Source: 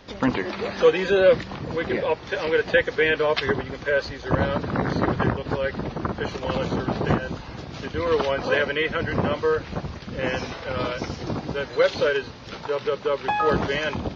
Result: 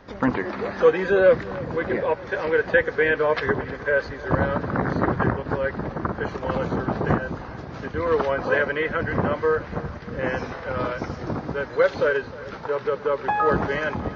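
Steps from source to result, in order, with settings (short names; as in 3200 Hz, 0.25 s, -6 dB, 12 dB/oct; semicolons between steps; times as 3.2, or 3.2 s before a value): resonant high shelf 2200 Hz -7.5 dB, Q 1.5; on a send: thinning echo 0.31 s, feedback 69%, high-pass 220 Hz, level -18 dB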